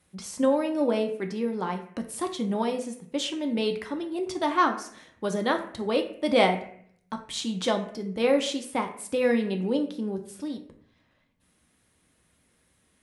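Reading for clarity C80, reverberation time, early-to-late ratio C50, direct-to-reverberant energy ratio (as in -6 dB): 13.0 dB, 0.60 s, 10.5 dB, 4.0 dB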